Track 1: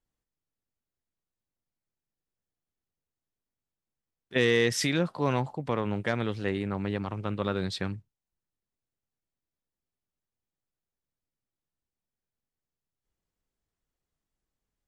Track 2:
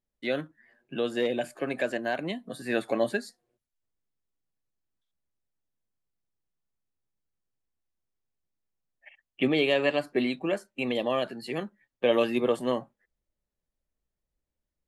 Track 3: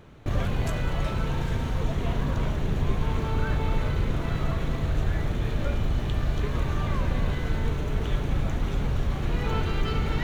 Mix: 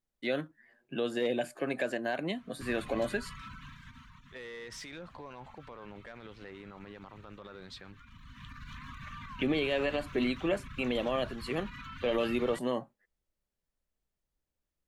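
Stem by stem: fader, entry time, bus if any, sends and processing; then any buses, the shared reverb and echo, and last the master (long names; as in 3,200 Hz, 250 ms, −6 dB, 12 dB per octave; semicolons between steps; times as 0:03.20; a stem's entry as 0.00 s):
−15.5 dB, 0.00 s, bus A, no send, no processing
−1.5 dB, 0.00 s, no bus, no send, brickwall limiter −19.5 dBFS, peak gain reduction 8 dB
−12.5 dB, 2.35 s, bus A, no send, brick-wall band-stop 290–930 Hz; brickwall limiter −20 dBFS, peak gain reduction 7.5 dB; reverb reduction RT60 0.77 s; automatic ducking −12 dB, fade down 1.05 s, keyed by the first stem
bus A: 0.0 dB, mid-hump overdrive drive 15 dB, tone 3,100 Hz, clips at −26.5 dBFS; brickwall limiter −36.5 dBFS, peak gain reduction 8.5 dB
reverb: not used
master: no processing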